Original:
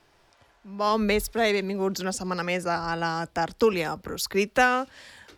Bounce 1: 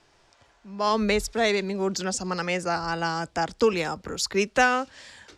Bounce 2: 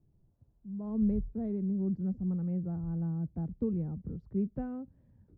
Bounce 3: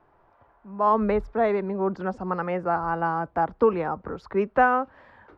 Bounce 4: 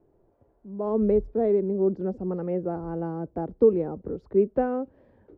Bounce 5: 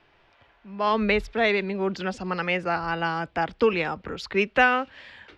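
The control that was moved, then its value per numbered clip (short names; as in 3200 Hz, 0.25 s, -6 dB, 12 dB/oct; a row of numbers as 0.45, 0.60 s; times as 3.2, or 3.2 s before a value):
synth low-pass, frequency: 7400, 160, 1100, 420, 2800 Hz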